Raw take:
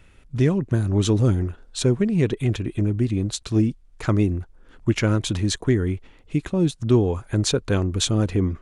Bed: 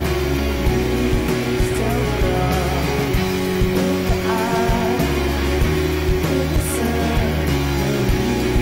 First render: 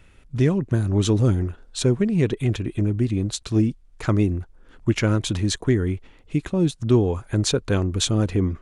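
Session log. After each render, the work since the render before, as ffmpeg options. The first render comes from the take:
-af anull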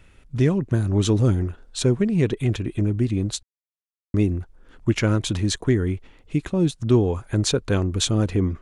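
-filter_complex "[0:a]asplit=3[s0][s1][s2];[s0]atrim=end=3.43,asetpts=PTS-STARTPTS,afade=t=out:st=3.426:d=0.004:c=hsin[s3];[s1]atrim=start=3.43:end=4.14,asetpts=PTS-STARTPTS,volume=0[s4];[s2]atrim=start=4.14,asetpts=PTS-STARTPTS,afade=t=in:d=0.004:c=hsin[s5];[s3][s4][s5]concat=n=3:v=0:a=1"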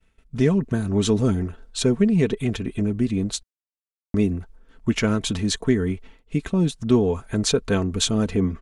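-af "agate=range=0.0224:threshold=0.00794:ratio=3:detection=peak,aecho=1:1:4.5:0.51"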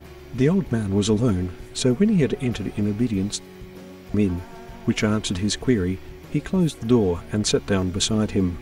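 -filter_complex "[1:a]volume=0.075[s0];[0:a][s0]amix=inputs=2:normalize=0"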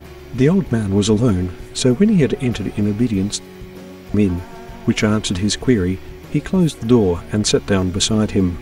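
-af "volume=1.78"

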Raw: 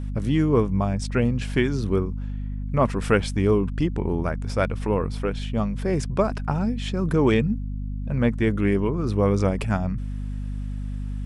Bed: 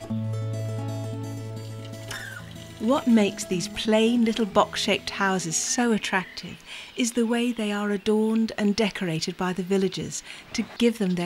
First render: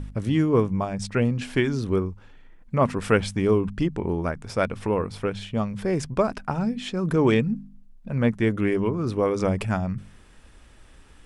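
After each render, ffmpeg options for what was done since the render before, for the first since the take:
-af "bandreject=f=50:t=h:w=4,bandreject=f=100:t=h:w=4,bandreject=f=150:t=h:w=4,bandreject=f=200:t=h:w=4,bandreject=f=250:t=h:w=4"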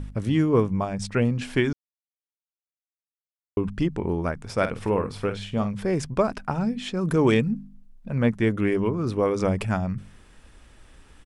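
-filter_complex "[0:a]asplit=3[s0][s1][s2];[s0]afade=t=out:st=4.57:d=0.02[s3];[s1]asplit=2[s4][s5];[s5]adelay=49,volume=0.316[s6];[s4][s6]amix=inputs=2:normalize=0,afade=t=in:st=4.57:d=0.02,afade=t=out:st=5.71:d=0.02[s7];[s2]afade=t=in:st=5.71:d=0.02[s8];[s3][s7][s8]amix=inputs=3:normalize=0,asettb=1/sr,asplit=3[s9][s10][s11];[s9]atrim=end=7.014[s12];[s10]atrim=start=7.01:end=7.49,asetpts=PTS-STARTPTS,afade=t=in:d=0.004:c=qsin,afade=t=out:st=0.476:d=0.004:c=qsin,highshelf=f=7400:g=9[s13];[s11]atrim=start=7.486[s14];[s12][s13]acrossfade=d=0.004:c1=hsin:c2=qsin[s15];[s15][s14]acrossfade=d=0.004:c1=qsin:c2=hsin,asplit=3[s16][s17][s18];[s16]atrim=end=1.73,asetpts=PTS-STARTPTS,afade=t=out:st=1.726:d=0.004:c=hsin[s19];[s17]atrim=start=1.73:end=3.57,asetpts=PTS-STARTPTS,volume=0[s20];[s18]atrim=start=3.57,asetpts=PTS-STARTPTS,afade=t=in:d=0.004:c=hsin[s21];[s19][s20][s21]concat=n=3:v=0:a=1"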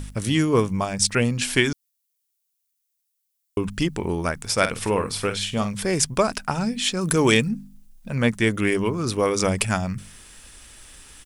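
-af "crystalizer=i=7:c=0"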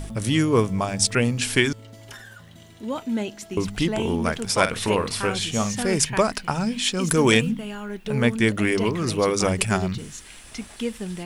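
-filter_complex "[1:a]volume=0.447[s0];[0:a][s0]amix=inputs=2:normalize=0"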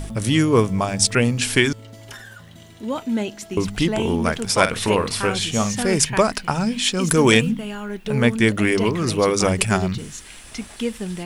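-af "volume=1.41,alimiter=limit=0.891:level=0:latency=1"

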